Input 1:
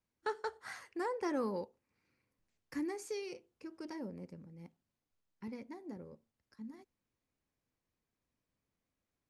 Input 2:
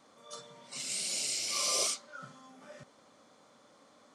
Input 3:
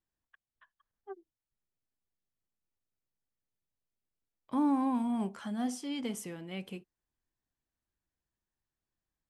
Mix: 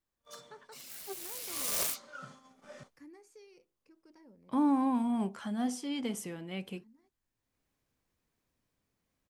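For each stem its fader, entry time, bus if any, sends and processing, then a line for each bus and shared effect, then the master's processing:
-15.5 dB, 0.25 s, no send, upward compressor, threshold -49 dBFS
+0.5 dB, 0.00 s, no send, self-modulated delay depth 0.17 ms; gate -53 dBFS, range -36 dB; auto duck -9 dB, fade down 0.85 s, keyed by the third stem
+1.0 dB, 0.00 s, no send, dry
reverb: off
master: dry

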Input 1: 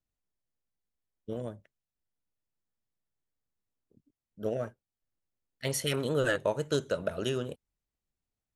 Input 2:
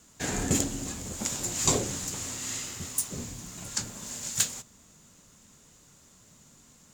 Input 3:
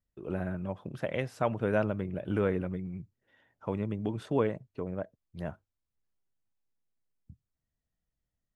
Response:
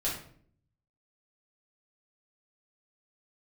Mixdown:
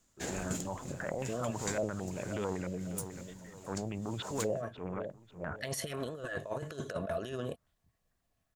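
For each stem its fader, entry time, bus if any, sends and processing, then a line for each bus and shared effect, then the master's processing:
+2.5 dB, 0.00 s, no send, no echo send, negative-ratio compressor -35 dBFS, ratio -0.5; limiter -25.5 dBFS, peak gain reduction 6.5 dB; small resonant body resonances 680/1100/1700 Hz, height 12 dB
+2.0 dB, 0.00 s, no send, no echo send, upward expander 1.5:1, over -53 dBFS; auto duck -8 dB, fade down 0.70 s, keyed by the third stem
-1.0 dB, 0.00 s, no send, echo send -15.5 dB, transient shaper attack -10 dB, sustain +9 dB; stepped low-pass 9 Hz 570–3500 Hz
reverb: off
echo: feedback echo 0.544 s, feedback 27%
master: compressor 2.5:1, threshold -35 dBFS, peak gain reduction 11.5 dB

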